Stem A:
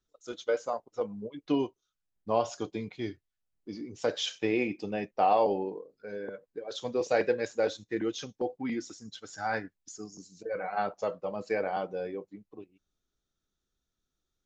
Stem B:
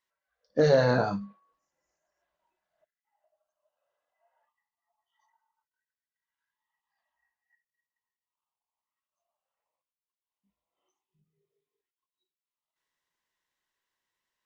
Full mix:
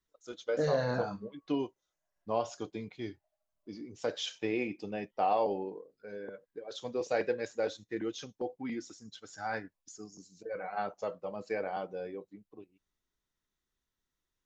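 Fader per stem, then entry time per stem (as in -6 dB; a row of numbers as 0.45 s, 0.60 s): -4.5 dB, -8.5 dB; 0.00 s, 0.00 s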